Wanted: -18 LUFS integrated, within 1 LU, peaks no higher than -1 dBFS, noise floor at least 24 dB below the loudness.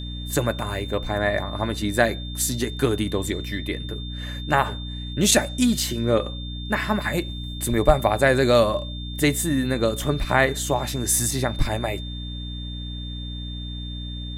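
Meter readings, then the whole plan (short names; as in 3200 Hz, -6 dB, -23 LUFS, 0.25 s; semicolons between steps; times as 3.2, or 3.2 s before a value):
hum 60 Hz; harmonics up to 300 Hz; hum level -30 dBFS; steady tone 3600 Hz; tone level -37 dBFS; loudness -23.5 LUFS; peak -3.5 dBFS; loudness target -18.0 LUFS
-> notches 60/120/180/240/300 Hz; notch 3600 Hz, Q 30; gain +5.5 dB; limiter -1 dBFS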